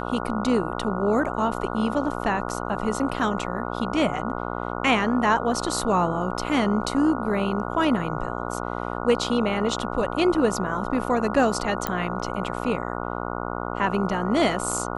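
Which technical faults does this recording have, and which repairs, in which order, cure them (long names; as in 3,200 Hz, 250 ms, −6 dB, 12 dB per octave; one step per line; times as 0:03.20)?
mains buzz 60 Hz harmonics 24 −30 dBFS
0:11.87: click −9 dBFS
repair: click removal
hum removal 60 Hz, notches 24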